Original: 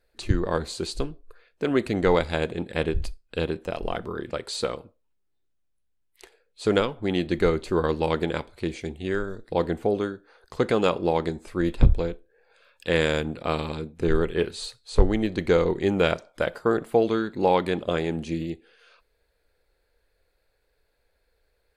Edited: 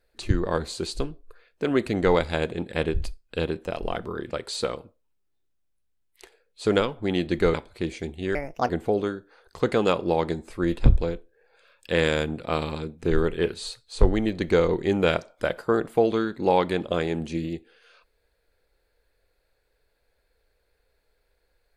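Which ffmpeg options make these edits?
-filter_complex "[0:a]asplit=4[s0][s1][s2][s3];[s0]atrim=end=7.542[s4];[s1]atrim=start=8.358:end=9.174[s5];[s2]atrim=start=9.17:end=9.66,asetpts=PTS-STARTPTS,asetrate=63504,aresample=44100,atrim=end_sample=15006,asetpts=PTS-STARTPTS[s6];[s3]atrim=start=9.656[s7];[s4][s5]acrossfade=d=0.004:c1=hsin:c2=hsin[s8];[s8][s6]acrossfade=d=0.004:c1=hsin:c2=hsin[s9];[s9][s7]acrossfade=d=0.004:c1=hsin:c2=hsin"

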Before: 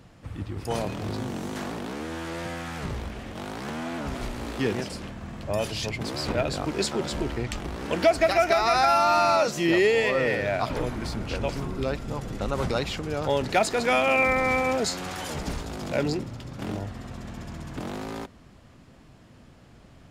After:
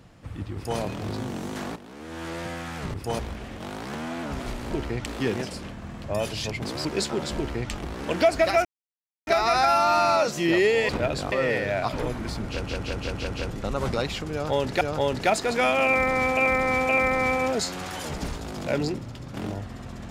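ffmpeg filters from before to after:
-filter_complex "[0:a]asplit=19[s0][s1][s2][s3][s4][s5][s6][s7][s8][s9][s10][s11][s12][s13][s14][s15][s16][s17][s18];[s0]atrim=end=1.76,asetpts=PTS-STARTPTS,afade=t=out:st=1.756:d=0.004:c=hsin:silence=0.251189[s19];[s1]atrim=start=1.76:end=2.942,asetpts=PTS-STARTPTS,afade=t=in:d=0.49:c=qua:silence=0.251189[s20];[s2]atrim=start=0.548:end=0.802[s21];[s3]atrim=start=2.938:end=4.452[s22];[s4]atrim=start=7.168:end=7.532[s23];[s5]atrim=start=4.448:end=6.242[s24];[s6]atrim=start=6.668:end=8.47,asetpts=PTS-STARTPTS,afade=t=out:st=1.798:d=0.004:c=hsin,apad=pad_dur=0.62[s25];[s7]atrim=start=8.47:end=10.092,asetpts=PTS-STARTPTS,afade=t=in:d=0.004:c=hsin[s26];[s8]atrim=start=6.238:end=6.672[s27];[s9]atrim=start=10.088:end=11.422[s28];[s10]atrim=start=11.248:end=11.422[s29];[s11]atrim=start=11.248:end=11.422[s30];[s12]atrim=start=11.248:end=11.422[s31];[s13]atrim=start=11.248:end=11.422[s32];[s14]atrim=start=11.248:end=11.422[s33];[s15]atrim=start=12.268:end=13.582[s34];[s16]atrim=start=13.098:end=14.662[s35];[s17]atrim=start=14.138:end=14.662[s36];[s18]atrim=start=14.138[s37];[s19][s20]concat=n=2:v=0:a=1[s38];[s38][s21]acrossfade=d=0.004:c1=hsin:c2=hsin[s39];[s39][s22]acrossfade=d=0.004:c1=hsin:c2=hsin[s40];[s40][s23]acrossfade=d=0.004:c1=hsin:c2=hsin[s41];[s41][s24]acrossfade=d=0.004:c1=hsin:c2=hsin[s42];[s25][s26]concat=n=2:v=0:a=1[s43];[s42][s43]acrossfade=d=0.004:c1=hsin:c2=hsin[s44];[s44][s27]acrossfade=d=0.004:c1=hsin:c2=hsin[s45];[s45][s28]acrossfade=d=0.004:c1=hsin:c2=hsin[s46];[s46][s29]acrossfade=d=0.004:c1=hsin:c2=hsin[s47];[s47][s30]acrossfade=d=0.004:c1=hsin:c2=hsin[s48];[s48][s31]acrossfade=d=0.004:c1=hsin:c2=hsin[s49];[s49][s32]acrossfade=d=0.004:c1=hsin:c2=hsin[s50];[s50][s33]acrossfade=d=0.004:c1=hsin:c2=hsin[s51];[s51][s34]acrossfade=d=0.004:c1=hsin:c2=hsin[s52];[s52][s35]acrossfade=d=0.004:c1=hsin:c2=hsin[s53];[s53][s36]acrossfade=d=0.004:c1=hsin:c2=hsin[s54];[s54][s37]acrossfade=d=0.004:c1=hsin:c2=hsin"

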